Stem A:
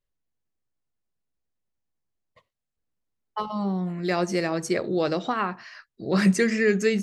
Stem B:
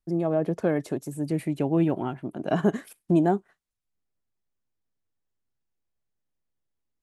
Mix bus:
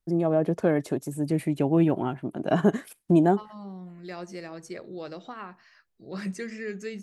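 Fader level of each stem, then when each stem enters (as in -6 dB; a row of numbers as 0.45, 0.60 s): -13.5, +1.5 dB; 0.00, 0.00 s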